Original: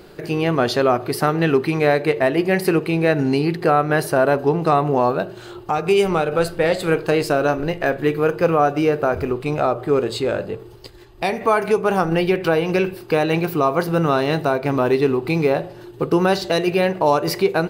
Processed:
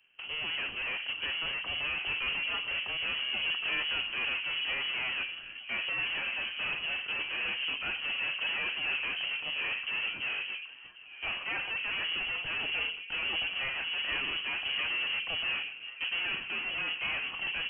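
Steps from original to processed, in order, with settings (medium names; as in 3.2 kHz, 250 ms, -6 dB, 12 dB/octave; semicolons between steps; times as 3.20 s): hum notches 60/120/180/240/300 Hz; valve stage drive 31 dB, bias 0.8; on a send: repeats whose band climbs or falls 755 ms, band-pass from 230 Hz, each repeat 1.4 oct, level -3 dB; on the sum: frequency inversion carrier 3.1 kHz; three bands expanded up and down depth 100%; trim -1.5 dB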